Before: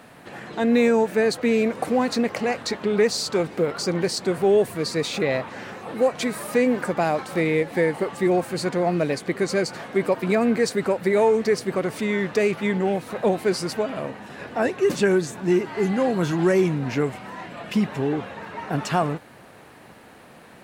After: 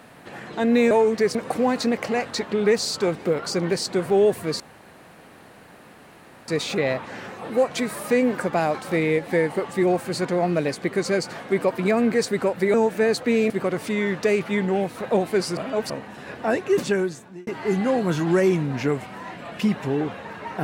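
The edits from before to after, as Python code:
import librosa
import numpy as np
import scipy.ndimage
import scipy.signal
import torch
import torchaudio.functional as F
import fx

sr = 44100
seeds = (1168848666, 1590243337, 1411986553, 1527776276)

y = fx.edit(x, sr, fx.swap(start_s=0.91, length_s=0.76, other_s=11.18, other_length_s=0.44),
    fx.insert_room_tone(at_s=4.92, length_s=1.88),
    fx.reverse_span(start_s=13.69, length_s=0.33),
    fx.fade_out_span(start_s=14.86, length_s=0.73), tone=tone)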